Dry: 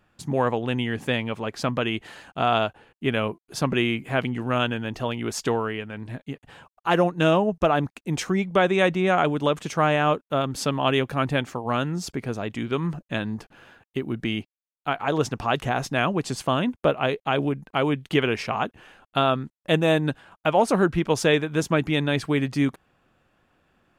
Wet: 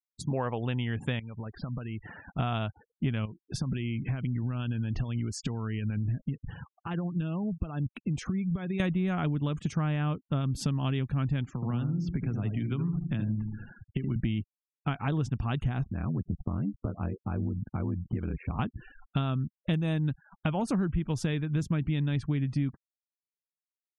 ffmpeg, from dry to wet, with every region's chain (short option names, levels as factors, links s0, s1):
-filter_complex "[0:a]asettb=1/sr,asplit=3[s0][s1][s2];[s0]atrim=end=1.194[s3];[s1]atrim=start=1.19:end=2.39,asetpts=PTS-STARTPTS,afade=t=in:d=0.004:c=qsin,afade=t=out:st=1.196:d=0.004:c=qsin,lowpass=2300,acompressor=threshold=0.0126:ratio=8:attack=3.2:release=140:knee=1:detection=peak[s4];[s2]atrim=start=2.386[s5];[s3][s4]acrossfade=d=0.004:c1=hsin:c2=qsin[s6];[s6][s5]acrossfade=d=0.004:c1=qsin:c2=hsin,asettb=1/sr,asplit=3[s7][s8][s9];[s7]atrim=end=3.254[s10];[s8]atrim=start=3.25:end=8.8,asetpts=PTS-STARTPTS,afade=t=in:d=0.004:c=qsin,afade=t=out:st=5.546:d=0.004:c=qsin,acompressor=threshold=0.02:ratio=6:attack=3.2:release=140:knee=1:detection=peak,acrusher=bits=8:mode=log:mix=0:aa=0.000001[s11];[s9]atrim=start=8.796[s12];[s10][s11]acrossfade=d=0.004:c1=hsin:c2=qsin[s13];[s13][s12]acrossfade=d=0.004:c1=qsin:c2=hsin,asettb=1/sr,asplit=3[s14][s15][s16];[s14]atrim=end=11.544[s17];[s15]atrim=start=11.54:end=14.16,asetpts=PTS-STARTPTS,afade=t=in:d=0.004:c=qsin,afade=t=out:st=2.616:d=0.004:c=qsin,acrossover=split=120|680|3400[s18][s19][s20][s21];[s18]acompressor=threshold=0.00251:ratio=3[s22];[s19]acompressor=threshold=0.0126:ratio=3[s23];[s20]acompressor=threshold=0.00708:ratio=3[s24];[s21]acompressor=threshold=0.002:ratio=3[s25];[s22][s23][s24][s25]amix=inputs=4:normalize=0,asplit=2[s26][s27];[s27]adelay=75,lowpass=f=1100:p=1,volume=0.596,asplit=2[s28][s29];[s29]adelay=75,lowpass=f=1100:p=1,volume=0.48,asplit=2[s30][s31];[s31]adelay=75,lowpass=f=1100:p=1,volume=0.48,asplit=2[s32][s33];[s33]adelay=75,lowpass=f=1100:p=1,volume=0.48,asplit=2[s34][s35];[s35]adelay=75,lowpass=f=1100:p=1,volume=0.48,asplit=2[s36][s37];[s37]adelay=75,lowpass=f=1100:p=1,volume=0.48[s38];[s26][s28][s30][s32][s34][s36][s38]amix=inputs=7:normalize=0,atrim=end_sample=115542[s39];[s16]atrim=start=14.156[s40];[s17][s39]acrossfade=d=0.004:c1=hsin:c2=qsin[s41];[s41][s40]acrossfade=d=0.004:c1=qsin:c2=hsin,asettb=1/sr,asplit=3[s42][s43][s44];[s42]atrim=end=15.834[s45];[s43]atrim=start=15.83:end=18.59,asetpts=PTS-STARTPTS,afade=t=in:d=0.004:c=qsin,afade=t=out:st=2.756:d=0.004:c=qsin,lowpass=1500,acompressor=threshold=0.0141:ratio=2:attack=3.2:release=140:knee=1:detection=peak,aeval=exprs='val(0)*sin(2*PI*43*n/s)':c=same[s46];[s44]atrim=start=18.586[s47];[s45][s46]acrossfade=d=0.004:c1=hsin:c2=qsin[s48];[s48][s47]acrossfade=d=0.004:c1=qsin:c2=hsin,afftfilt=real='re*gte(hypot(re,im),0.00891)':imag='im*gte(hypot(re,im),0.00891)':win_size=1024:overlap=0.75,asubboost=boost=10:cutoff=170,acompressor=threshold=0.0447:ratio=6"